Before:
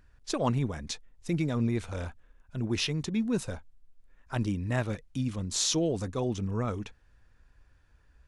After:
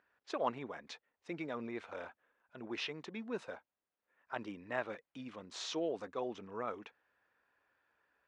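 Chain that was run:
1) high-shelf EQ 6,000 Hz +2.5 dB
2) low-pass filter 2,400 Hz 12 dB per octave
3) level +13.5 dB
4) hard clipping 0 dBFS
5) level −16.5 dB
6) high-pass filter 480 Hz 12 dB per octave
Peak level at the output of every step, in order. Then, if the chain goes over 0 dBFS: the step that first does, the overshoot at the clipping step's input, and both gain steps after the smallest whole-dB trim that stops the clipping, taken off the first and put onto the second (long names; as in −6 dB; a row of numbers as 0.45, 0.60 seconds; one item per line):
−10.5, −17.0, −3.5, −3.5, −20.0, −20.0 dBFS
no step passes full scale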